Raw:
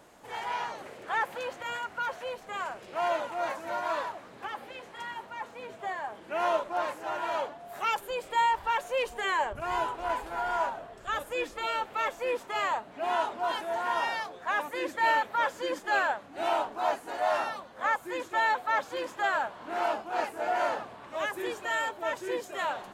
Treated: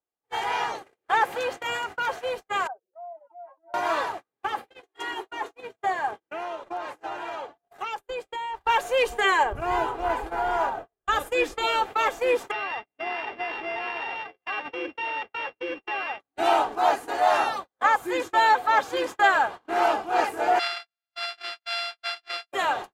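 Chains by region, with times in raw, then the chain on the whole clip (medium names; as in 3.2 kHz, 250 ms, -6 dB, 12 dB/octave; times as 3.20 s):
2.67–3.74 s: spectral contrast enhancement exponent 3 + hum notches 50/100/150/200/250 Hz + compression, threshold -40 dBFS
4.81–5.61 s: resonant low shelf 260 Hz -6 dB, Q 3 + comb 2.8 ms, depth 44%
6.11–8.61 s: gate with hold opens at -37 dBFS, closes at -46 dBFS + treble shelf 9.2 kHz -9.5 dB + compression 16:1, threshold -35 dBFS
9.43–11.07 s: treble shelf 2.3 kHz -8 dB + short-mantissa float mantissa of 6-bit
12.51–16.20 s: sorted samples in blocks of 16 samples + compression 8:1, threshold -34 dBFS + low-pass 3.2 kHz 24 dB/octave
20.59–22.52 s: sorted samples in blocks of 64 samples + Butterworth band-pass 2.4 kHz, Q 0.91 + comb 5.6 ms, depth 83%
whole clip: gate -40 dBFS, range -47 dB; comb 2.5 ms, depth 41%; trim +7 dB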